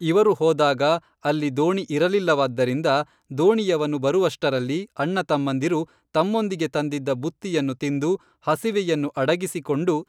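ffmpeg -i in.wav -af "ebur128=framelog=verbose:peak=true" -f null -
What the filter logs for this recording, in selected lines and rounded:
Integrated loudness:
  I:         -22.7 LUFS
  Threshold: -32.6 LUFS
Loudness range:
  LRA:         3.1 LU
  Threshold: -42.9 LUFS
  LRA low:   -24.6 LUFS
  LRA high:  -21.5 LUFS
True peak:
  Peak:       -7.0 dBFS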